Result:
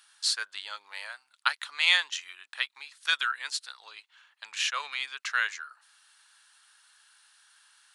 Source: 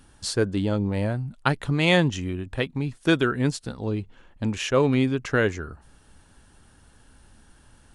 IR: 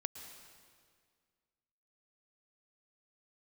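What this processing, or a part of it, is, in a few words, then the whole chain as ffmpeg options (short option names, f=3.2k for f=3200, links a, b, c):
headphones lying on a table: -af "highpass=f=1.2k:w=0.5412,highpass=f=1.2k:w=1.3066,equalizer=f=4.1k:t=o:w=0.55:g=6"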